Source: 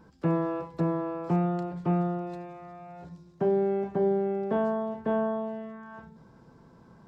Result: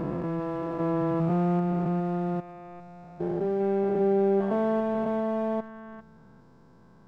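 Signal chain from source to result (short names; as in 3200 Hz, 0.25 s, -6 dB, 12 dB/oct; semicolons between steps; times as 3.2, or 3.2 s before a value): stepped spectrum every 0.4 s; in parallel at -4 dB: backlash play -31.5 dBFS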